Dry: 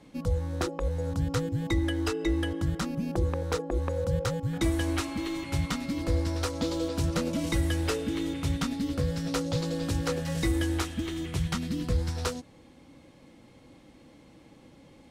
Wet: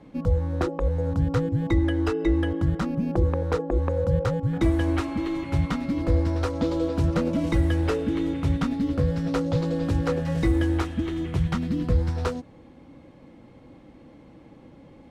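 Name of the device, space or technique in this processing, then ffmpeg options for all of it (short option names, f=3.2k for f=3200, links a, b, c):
through cloth: -af "highshelf=f=3.2k:g=-17,volume=5.5dB"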